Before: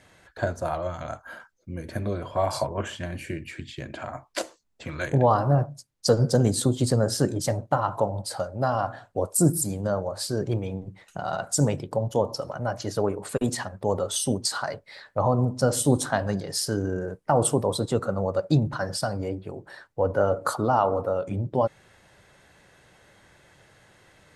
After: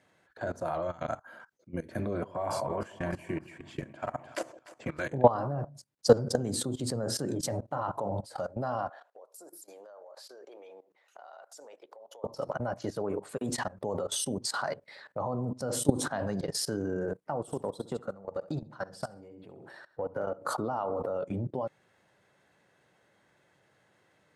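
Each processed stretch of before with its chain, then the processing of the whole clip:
2.06–5.02 s: peaking EQ 3.9 kHz -7 dB 0.63 oct + two-band feedback delay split 770 Hz, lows 155 ms, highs 300 ms, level -13.5 dB
8.89–12.24 s: high-pass 470 Hz 24 dB/octave + peaking EQ 8.6 kHz -8 dB 0.41 oct + compression 2.5:1, threshold -49 dBFS
17.41–20.38 s: compression 2.5:1, threshold -36 dBFS + feedback delay 66 ms, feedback 33%, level -9.5 dB
whole clip: high-pass 140 Hz 12 dB/octave; treble shelf 2.4 kHz -6 dB; level held to a coarse grid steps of 18 dB; trim +4 dB

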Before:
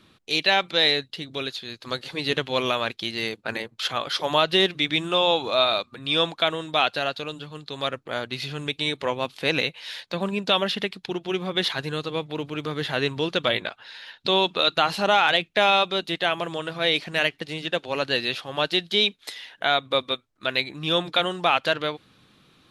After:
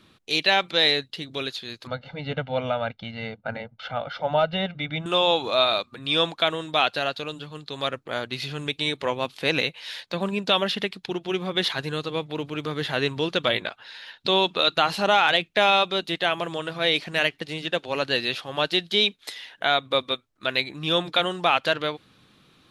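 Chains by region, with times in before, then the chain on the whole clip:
1.87–5.06 s: comb 1.4 ms, depth 95% + overload inside the chain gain 7.5 dB + tape spacing loss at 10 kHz 41 dB
whole clip: none

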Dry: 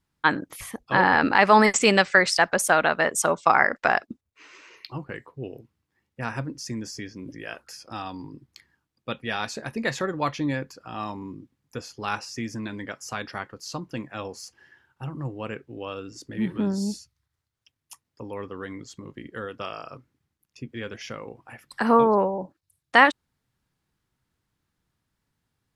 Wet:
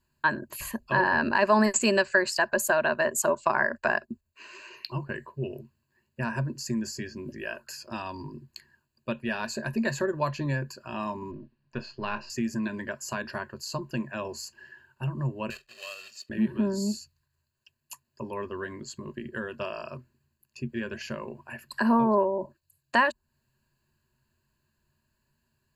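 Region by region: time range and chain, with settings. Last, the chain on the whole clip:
11.31–12.30 s: partial rectifier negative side -3 dB + low-pass 4.3 kHz 24 dB/octave + doubling 28 ms -11.5 dB
15.50–16.30 s: block-companded coder 3-bit + band-pass filter 3.3 kHz, Q 1.2 + comb 1.6 ms, depth 75%
whole clip: rippled EQ curve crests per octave 1.4, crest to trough 14 dB; compression 1.5:1, threshold -29 dBFS; dynamic bell 3 kHz, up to -5 dB, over -39 dBFS, Q 0.72

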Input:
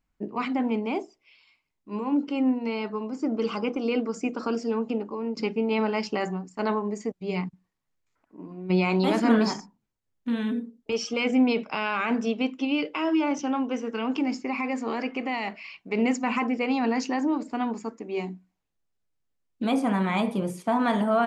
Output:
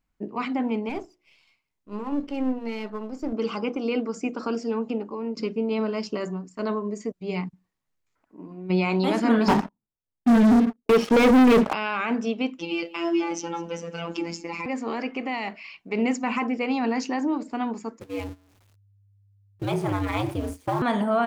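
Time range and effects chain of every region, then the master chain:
0.89–3.33 s: partial rectifier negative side -7 dB + hum notches 60/120/180/240/300/360 Hz
5.31–7.20 s: dynamic bell 2.1 kHz, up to -7 dB, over -46 dBFS, Q 1.2 + Butterworth band-stop 810 Hz, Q 4.9
9.48–11.73 s: low-pass 1.4 kHz + waveshaping leveller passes 5
12.59–14.66 s: tone controls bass +3 dB, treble +9 dB + robot voice 169 Hz + delay 199 ms -20 dB
18.00–20.82 s: jump at every zero crossing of -34 dBFS + gate -33 dBFS, range -17 dB + ring modulator 100 Hz
whole clip: none

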